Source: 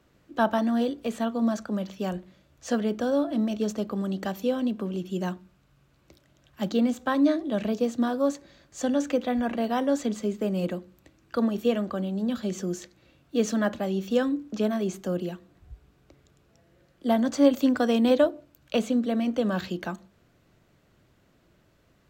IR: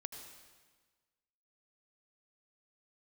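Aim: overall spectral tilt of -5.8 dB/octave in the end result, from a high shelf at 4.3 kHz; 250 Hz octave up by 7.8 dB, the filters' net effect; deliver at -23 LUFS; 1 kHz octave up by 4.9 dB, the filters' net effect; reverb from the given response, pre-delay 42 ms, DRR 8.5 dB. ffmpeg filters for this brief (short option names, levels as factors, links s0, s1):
-filter_complex "[0:a]equalizer=f=250:t=o:g=8.5,equalizer=f=1000:t=o:g=6.5,highshelf=f=4300:g=-6.5,asplit=2[s0][s1];[1:a]atrim=start_sample=2205,adelay=42[s2];[s1][s2]afir=irnorm=-1:irlink=0,volume=0.531[s3];[s0][s3]amix=inputs=2:normalize=0,volume=0.708"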